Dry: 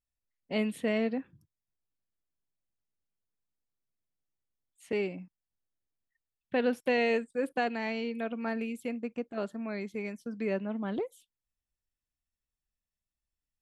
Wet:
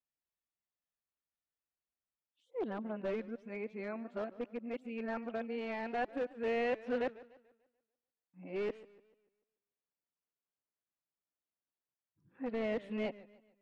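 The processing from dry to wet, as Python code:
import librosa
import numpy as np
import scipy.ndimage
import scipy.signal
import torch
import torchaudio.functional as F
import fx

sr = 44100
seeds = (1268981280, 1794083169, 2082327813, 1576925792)

p1 = np.flip(x).copy()
p2 = fx.highpass(p1, sr, hz=620.0, slope=6)
p3 = (np.mod(10.0 ** (30.5 / 20.0) * p2 + 1.0, 2.0) - 1.0) / 10.0 ** (30.5 / 20.0)
p4 = p2 + F.gain(torch.from_numpy(p3), -7.0).numpy()
p5 = fx.spacing_loss(p4, sr, db_at_10k=38)
y = fx.echo_warbled(p5, sr, ms=146, feedback_pct=41, rate_hz=2.8, cents=132, wet_db=-19)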